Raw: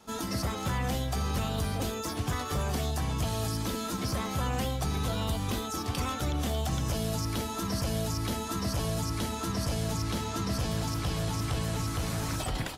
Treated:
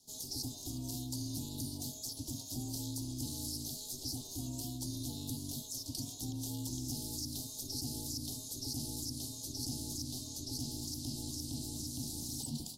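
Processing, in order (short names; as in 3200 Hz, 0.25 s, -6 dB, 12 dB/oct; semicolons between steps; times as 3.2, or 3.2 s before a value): elliptic band-stop 580–4400 Hz, stop band 60 dB; passive tone stack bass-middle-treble 10-0-10; ring modulator 190 Hz; gain +3 dB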